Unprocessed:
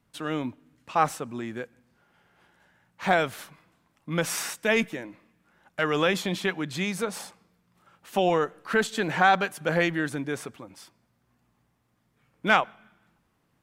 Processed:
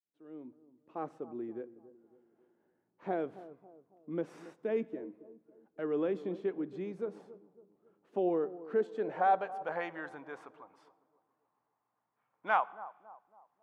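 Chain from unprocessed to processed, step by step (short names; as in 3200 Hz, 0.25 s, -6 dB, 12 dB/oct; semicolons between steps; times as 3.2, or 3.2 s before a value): opening faded in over 1.31 s; band-pass sweep 360 Hz -> 920 Hz, 8.69–9.8; analogue delay 0.276 s, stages 2048, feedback 42%, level -16 dB; on a send at -19 dB: reverb RT60 1.1 s, pre-delay 3 ms; on the sum: gain -2.5 dB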